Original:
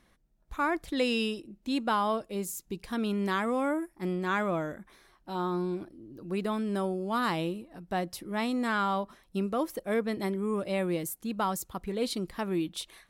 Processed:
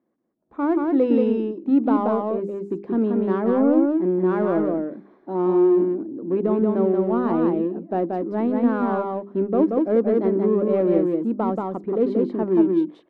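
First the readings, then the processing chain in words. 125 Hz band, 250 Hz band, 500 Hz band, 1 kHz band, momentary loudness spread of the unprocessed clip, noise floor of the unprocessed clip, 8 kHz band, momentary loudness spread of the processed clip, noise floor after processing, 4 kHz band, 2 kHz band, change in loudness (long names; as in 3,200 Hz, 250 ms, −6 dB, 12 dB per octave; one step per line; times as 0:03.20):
+6.5 dB, +12.0 dB, +12.5 dB, +3.5 dB, 8 LU, −67 dBFS, below −25 dB, 8 LU, −57 dBFS, below −10 dB, −5.0 dB, +10.0 dB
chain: automatic gain control gain up to 16 dB
four-pole ladder band-pass 350 Hz, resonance 40%
in parallel at −11 dB: soft clipping −31.5 dBFS, distortion −7 dB
on the sum: mains-hum notches 50/100/150/200/250/300/350/400 Hz
on a send: single-tap delay 181 ms −3 dB
on the sum: level +5.5 dB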